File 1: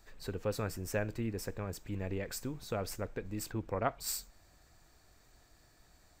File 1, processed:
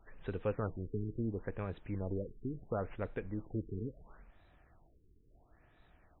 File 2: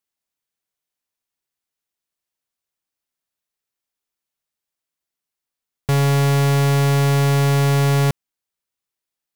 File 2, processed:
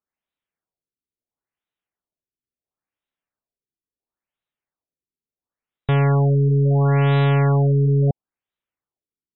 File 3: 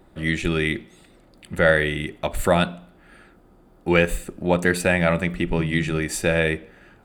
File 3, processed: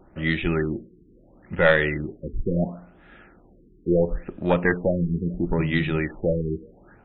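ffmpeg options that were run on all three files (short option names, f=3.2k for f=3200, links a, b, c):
-af "aeval=exprs='0.891*(cos(1*acos(clip(val(0)/0.891,-1,1)))-cos(1*PI/2))+0.355*(cos(2*acos(clip(val(0)/0.891,-1,1)))-cos(2*PI/2))':c=same,afftfilt=real='re*lt(b*sr/1024,430*pow(4100/430,0.5+0.5*sin(2*PI*0.73*pts/sr)))':imag='im*lt(b*sr/1024,430*pow(4100/430,0.5+0.5*sin(2*PI*0.73*pts/sr)))':win_size=1024:overlap=0.75"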